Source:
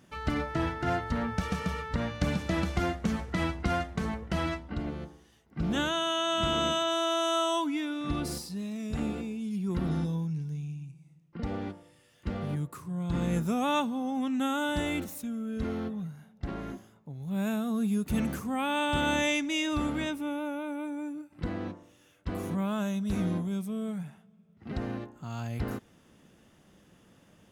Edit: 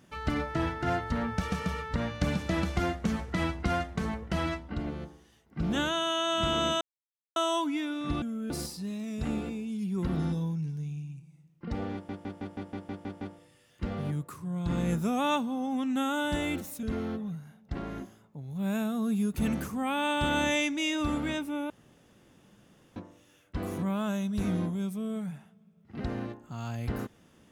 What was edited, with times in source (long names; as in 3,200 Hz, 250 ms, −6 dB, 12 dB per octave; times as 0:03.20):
0:06.81–0:07.36: silence
0:11.65: stutter 0.16 s, 9 plays
0:15.27–0:15.55: move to 0:08.22
0:20.42–0:21.68: fill with room tone